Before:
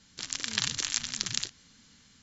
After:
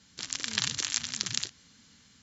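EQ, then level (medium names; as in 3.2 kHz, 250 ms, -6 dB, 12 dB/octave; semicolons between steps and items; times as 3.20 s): high-pass 47 Hz; 0.0 dB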